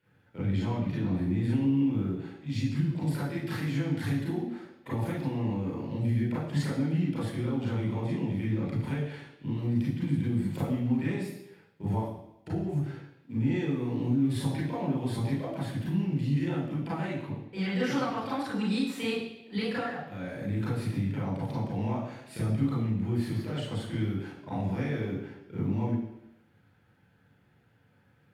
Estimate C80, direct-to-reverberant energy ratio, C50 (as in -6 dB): 5.5 dB, -7.5 dB, 1.0 dB